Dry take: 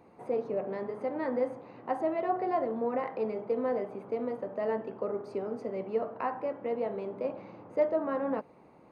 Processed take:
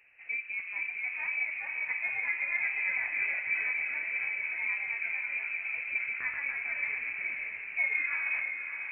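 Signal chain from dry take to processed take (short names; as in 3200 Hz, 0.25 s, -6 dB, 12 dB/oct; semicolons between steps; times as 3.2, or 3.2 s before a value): echoes that change speed 0.481 s, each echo +1 st, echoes 3; inverted band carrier 2800 Hz; diffused feedback echo 0.584 s, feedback 52%, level -6.5 dB; gain -4.5 dB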